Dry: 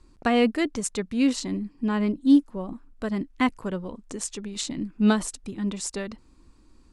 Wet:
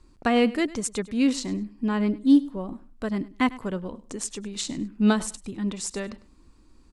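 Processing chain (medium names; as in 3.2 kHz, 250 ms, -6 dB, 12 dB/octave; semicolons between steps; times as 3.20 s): feedback delay 101 ms, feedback 22%, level -19 dB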